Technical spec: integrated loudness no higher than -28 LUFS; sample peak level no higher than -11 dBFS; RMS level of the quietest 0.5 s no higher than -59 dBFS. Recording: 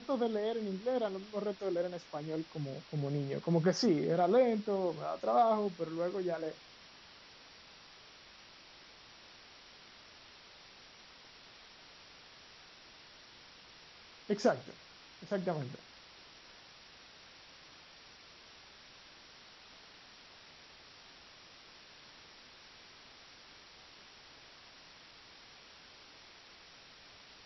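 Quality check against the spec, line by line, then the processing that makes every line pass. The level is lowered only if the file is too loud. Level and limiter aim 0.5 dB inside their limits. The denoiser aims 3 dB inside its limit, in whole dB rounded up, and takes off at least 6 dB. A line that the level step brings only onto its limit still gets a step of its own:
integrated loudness -34.0 LUFS: OK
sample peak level -16.5 dBFS: OK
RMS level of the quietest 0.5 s -57 dBFS: fail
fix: denoiser 6 dB, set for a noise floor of -57 dBFS

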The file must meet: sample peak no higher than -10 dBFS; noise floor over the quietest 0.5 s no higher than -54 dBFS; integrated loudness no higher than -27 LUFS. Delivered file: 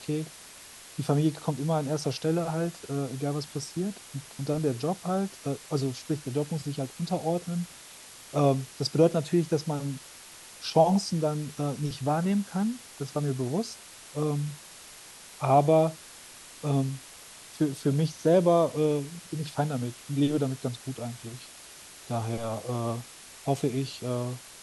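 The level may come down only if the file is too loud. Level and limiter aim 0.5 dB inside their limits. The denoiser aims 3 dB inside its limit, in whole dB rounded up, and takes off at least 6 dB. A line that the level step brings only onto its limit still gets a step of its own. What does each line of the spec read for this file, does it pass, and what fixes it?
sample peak -9.0 dBFS: fail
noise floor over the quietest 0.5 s -48 dBFS: fail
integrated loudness -29.0 LUFS: OK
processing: denoiser 9 dB, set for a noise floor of -48 dBFS; limiter -10.5 dBFS

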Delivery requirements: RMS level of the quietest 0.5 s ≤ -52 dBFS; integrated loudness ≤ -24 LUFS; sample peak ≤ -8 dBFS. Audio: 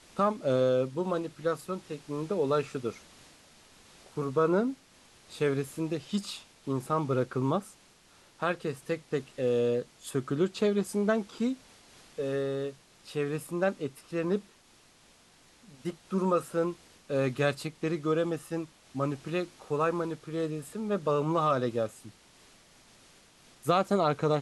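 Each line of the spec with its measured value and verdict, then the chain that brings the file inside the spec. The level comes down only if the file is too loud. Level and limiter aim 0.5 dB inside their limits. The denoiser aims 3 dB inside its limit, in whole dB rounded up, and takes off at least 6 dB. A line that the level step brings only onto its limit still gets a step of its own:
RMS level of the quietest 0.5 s -60 dBFS: OK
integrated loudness -31.0 LUFS: OK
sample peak -12.0 dBFS: OK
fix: none

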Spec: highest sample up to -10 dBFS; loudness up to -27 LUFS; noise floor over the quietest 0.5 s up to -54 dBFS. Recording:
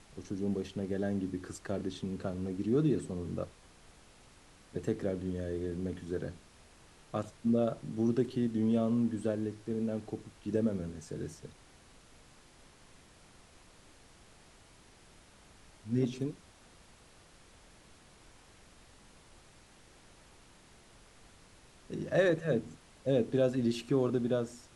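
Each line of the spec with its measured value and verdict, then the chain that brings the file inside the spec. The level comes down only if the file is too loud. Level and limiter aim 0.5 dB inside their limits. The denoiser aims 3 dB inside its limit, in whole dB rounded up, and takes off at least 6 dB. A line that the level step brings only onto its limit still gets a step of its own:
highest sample -15.5 dBFS: OK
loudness -34.0 LUFS: OK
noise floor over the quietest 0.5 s -59 dBFS: OK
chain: none

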